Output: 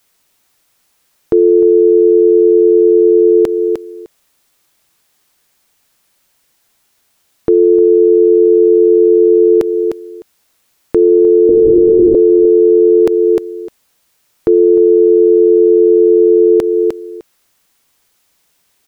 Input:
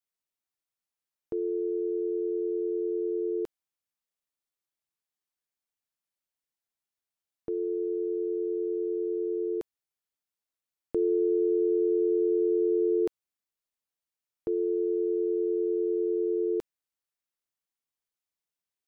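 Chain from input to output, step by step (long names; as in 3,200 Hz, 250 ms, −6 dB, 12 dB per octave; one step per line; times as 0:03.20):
0:07.54–0:08.46: high-frequency loss of the air 100 metres
0:11.49–0:12.15: linear-prediction vocoder at 8 kHz whisper
repeating echo 304 ms, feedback 15%, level −14 dB
in parallel at −1 dB: downward compressor, threshold −38 dBFS, peak gain reduction 15.5 dB
on the sum: boost into a limiter +26.5 dB
level −1 dB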